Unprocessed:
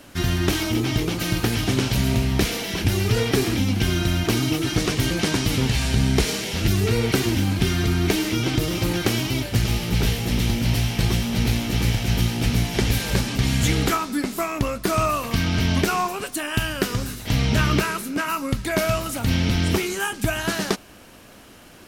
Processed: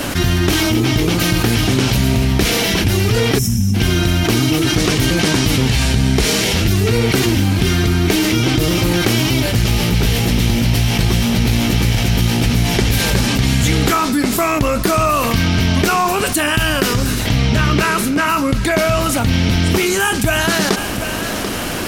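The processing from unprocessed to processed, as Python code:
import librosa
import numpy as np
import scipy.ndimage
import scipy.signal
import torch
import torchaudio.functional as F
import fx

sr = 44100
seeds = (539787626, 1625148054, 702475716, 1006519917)

y = fx.spec_box(x, sr, start_s=3.39, length_s=0.35, low_hz=240.0, high_hz=5100.0, gain_db=-26)
y = fx.high_shelf(y, sr, hz=9400.0, db=-7.0, at=(17.06, 19.34))
y = y + 10.0 ** (-23.5 / 20.0) * np.pad(y, (int(739 * sr / 1000.0), 0))[:len(y)]
y = fx.env_flatten(y, sr, amount_pct=70)
y = F.gain(torch.from_numpy(y), 3.0).numpy()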